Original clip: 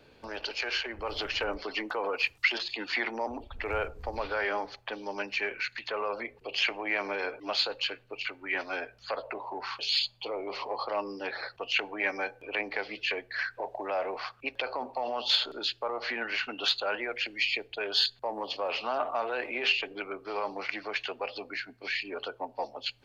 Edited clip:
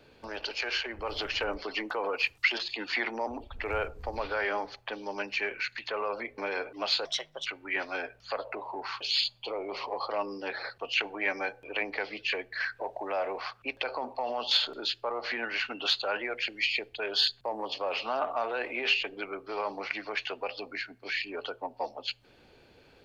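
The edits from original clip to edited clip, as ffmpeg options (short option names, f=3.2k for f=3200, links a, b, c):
-filter_complex "[0:a]asplit=4[a][b][c][d];[a]atrim=end=6.382[e];[b]atrim=start=7.048:end=7.724[f];[c]atrim=start=7.72:end=8.24,asetpts=PTS-STARTPTS,asetrate=56448,aresample=44100[g];[d]atrim=start=8.236[h];[e][f]acrossfade=d=0.004:c1=hsin:c2=hsin[i];[i][g]acrossfade=d=0.004:c1=hsin:c2=hsin[j];[j][h]acrossfade=d=0.004:c1=hsin:c2=hsin"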